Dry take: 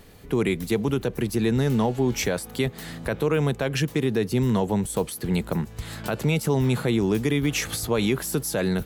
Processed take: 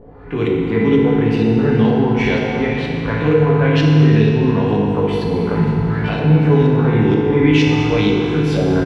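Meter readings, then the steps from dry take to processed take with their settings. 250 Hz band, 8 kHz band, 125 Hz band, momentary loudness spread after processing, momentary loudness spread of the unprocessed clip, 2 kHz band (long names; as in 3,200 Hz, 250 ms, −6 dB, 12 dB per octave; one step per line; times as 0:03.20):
+10.0 dB, below −10 dB, +11.0 dB, 6 LU, 6 LU, +8.0 dB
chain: double-tracking delay 19 ms −4.5 dB
on a send: flutter between parallel walls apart 10.1 metres, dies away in 0.33 s
on the sum: auto-filter low-pass saw up 2.1 Hz 510–4,200 Hz
transient designer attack −5 dB, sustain +1 dB
high-shelf EQ 7,300 Hz −6.5 dB
downward compressor, threshold −22 dBFS, peak gain reduction 9.5 dB
notch filter 620 Hz, Q 16
harmonic and percussive parts rebalanced harmonic +5 dB
feedback delay network reverb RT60 3.1 s, high-frequency decay 0.85×, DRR −2.5 dB
level +2 dB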